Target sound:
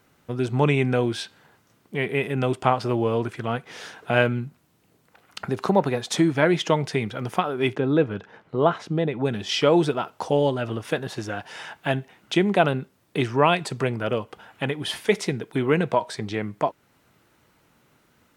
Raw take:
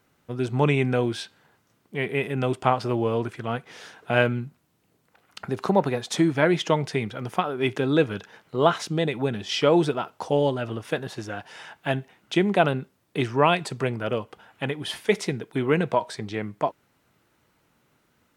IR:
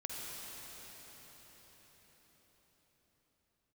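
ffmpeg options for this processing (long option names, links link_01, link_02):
-filter_complex "[0:a]asplit=2[link_01][link_02];[link_02]acompressor=threshold=-34dB:ratio=6,volume=-3dB[link_03];[link_01][link_03]amix=inputs=2:normalize=0,asplit=3[link_04][link_05][link_06];[link_04]afade=type=out:start_time=7.74:duration=0.02[link_07];[link_05]lowpass=frequency=1300:poles=1,afade=type=in:start_time=7.74:duration=0.02,afade=type=out:start_time=9.24:duration=0.02[link_08];[link_06]afade=type=in:start_time=9.24:duration=0.02[link_09];[link_07][link_08][link_09]amix=inputs=3:normalize=0"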